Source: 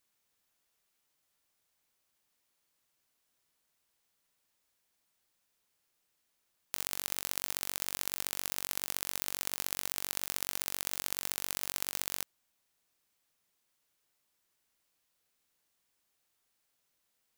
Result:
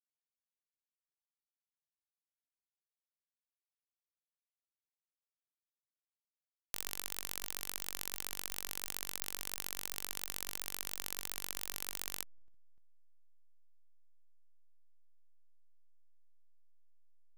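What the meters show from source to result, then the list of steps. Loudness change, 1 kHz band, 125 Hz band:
-5.0 dB, -5.0 dB, -4.5 dB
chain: compressor 12:1, threshold -46 dBFS, peak gain reduction 19 dB; backlash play -56.5 dBFS; gain +14 dB

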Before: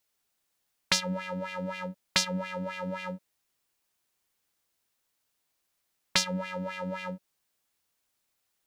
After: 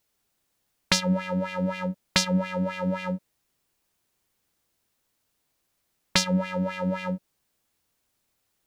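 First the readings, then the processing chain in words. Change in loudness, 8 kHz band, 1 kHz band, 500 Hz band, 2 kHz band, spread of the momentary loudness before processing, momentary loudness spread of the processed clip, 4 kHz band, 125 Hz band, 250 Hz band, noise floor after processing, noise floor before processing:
+4.5 dB, +2.5 dB, +4.0 dB, +6.0 dB, +3.0 dB, 11 LU, 9 LU, +2.5 dB, +9.5 dB, +9.5 dB, -76 dBFS, -79 dBFS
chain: low shelf 490 Hz +8 dB; gain +2.5 dB

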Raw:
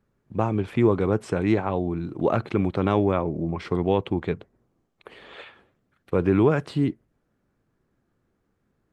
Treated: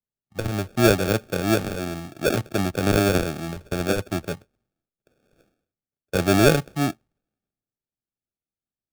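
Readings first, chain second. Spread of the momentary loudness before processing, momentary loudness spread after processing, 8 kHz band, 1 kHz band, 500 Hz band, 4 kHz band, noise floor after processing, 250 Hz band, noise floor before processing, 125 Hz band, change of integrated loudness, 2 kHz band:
9 LU, 14 LU, n/a, +0.5 dB, +0.5 dB, +12.5 dB, under -85 dBFS, -0.5 dB, -73 dBFS, +0.5 dB, +1.5 dB, +8.5 dB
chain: inverse Chebyshev low-pass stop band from 3500 Hz, stop band 40 dB; sample-rate reducer 1000 Hz, jitter 0%; three-band expander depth 70%

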